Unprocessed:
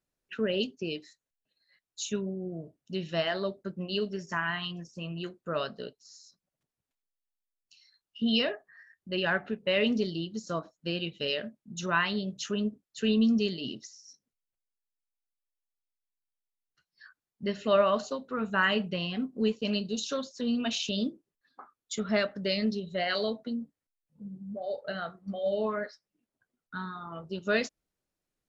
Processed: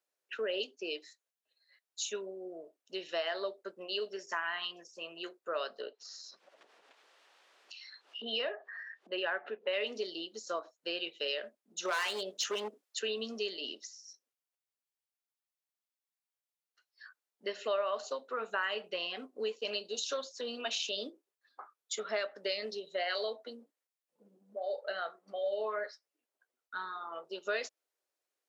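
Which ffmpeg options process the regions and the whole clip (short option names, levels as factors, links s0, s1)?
-filter_complex "[0:a]asettb=1/sr,asplit=3[s0][s1][s2];[s0]atrim=end=5.814[s3];[s1]atrim=start=5.81:end=9.73,asetpts=PTS-STARTPTS,afade=t=in:d=0.004:c=qsin,afade=t=out:st=3.916:d=0.004:c=qsin,highpass=140,lowpass=3000,acompressor=mode=upward:threshold=0.0224:ratio=2.5:attack=3.2:release=140:knee=2.83:detection=peak,equalizer=f=2200:w=5.3:g=-2.5[s4];[s2]atrim=start=9.726[s5];[s3][s4]acrossfade=d=0.004:c1=hsin:c2=qsin[s6];[s6][s5]acrossfade=d=0.004:c1=qsin:c2=hsin,asettb=1/sr,asplit=3[s7][s8][s9];[s7]atrim=end=11.854[s10];[s8]atrim=start=11.85:end=12.99,asetpts=PTS-STARTPTS,afade=t=in:d=0.004:c=qsin,afade=t=out:st=1.136:d=0.004:c=qsin,acontrast=76,equalizer=f=89:t=o:w=1.9:g=-7.5,volume=13.3,asoftclip=hard,volume=0.075[s11];[s9]atrim=start=12.986[s12];[s10][s11]acrossfade=d=0.004:c1=hsin:c2=qsin[s13];[s13][s12]acrossfade=d=0.004:c1=qsin:c2=hsin,highpass=f=410:w=0.5412,highpass=f=410:w=1.3066,acompressor=threshold=0.0251:ratio=3"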